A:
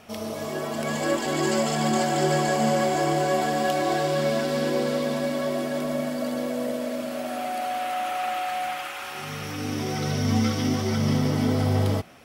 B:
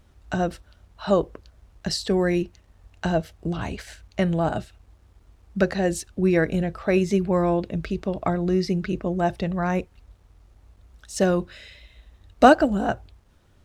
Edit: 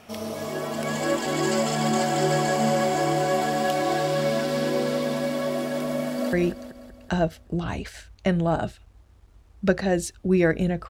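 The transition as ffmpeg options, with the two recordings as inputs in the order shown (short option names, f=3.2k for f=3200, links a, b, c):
-filter_complex "[0:a]apad=whole_dur=10.89,atrim=end=10.89,atrim=end=6.332[a];[1:a]atrim=start=2.258:end=6.82[b];[a][b]acrossfade=d=0.004:c1=hsin:c2=hsin,asplit=2[c][d];[d]afade=t=in:st=5.99:d=0.01,afade=t=out:st=6.33:d=0.01,aecho=0:1:190|380|570|760|950|1140|1330:0.375837|0.206711|0.113691|0.0625299|0.0343915|0.0189153|0.0104034[e];[c][e]amix=inputs=2:normalize=0"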